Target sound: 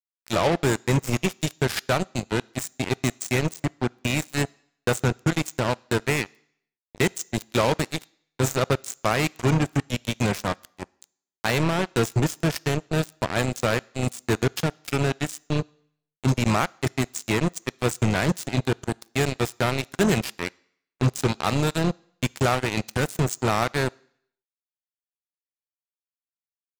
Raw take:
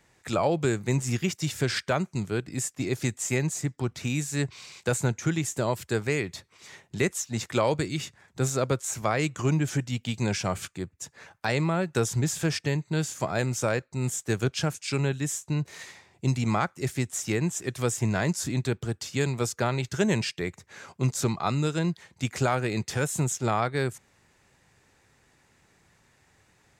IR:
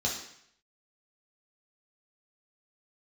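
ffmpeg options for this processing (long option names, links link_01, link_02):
-filter_complex "[0:a]asplit=2[link_01][link_02];[link_02]asetrate=35002,aresample=44100,atempo=1.25992,volume=-15dB[link_03];[link_01][link_03]amix=inputs=2:normalize=0,acrusher=bits=3:mix=0:aa=0.5,asplit=2[link_04][link_05];[1:a]atrim=start_sample=2205,lowshelf=frequency=430:gain=-8.5[link_06];[link_05][link_06]afir=irnorm=-1:irlink=0,volume=-28dB[link_07];[link_04][link_07]amix=inputs=2:normalize=0,volume=3dB"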